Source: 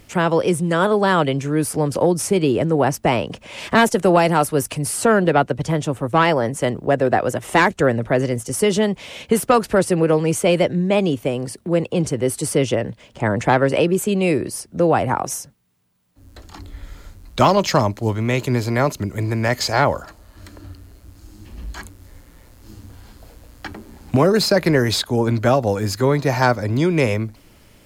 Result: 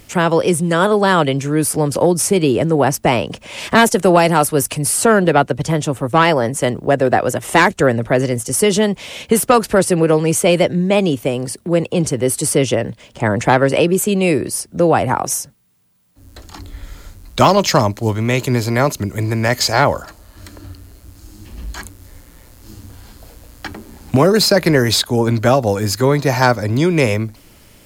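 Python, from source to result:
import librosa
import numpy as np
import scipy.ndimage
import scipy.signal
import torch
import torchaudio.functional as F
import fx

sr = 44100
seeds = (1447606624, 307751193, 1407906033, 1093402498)

y = fx.high_shelf(x, sr, hz=4700.0, db=5.5)
y = y * librosa.db_to_amplitude(3.0)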